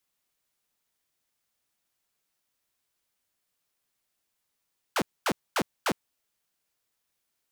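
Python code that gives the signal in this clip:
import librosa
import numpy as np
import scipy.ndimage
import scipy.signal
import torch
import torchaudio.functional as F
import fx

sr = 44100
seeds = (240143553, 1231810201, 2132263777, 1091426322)

y = fx.laser_zaps(sr, level_db=-20.5, start_hz=1700.0, end_hz=140.0, length_s=0.06, wave='saw', shots=4, gap_s=0.24)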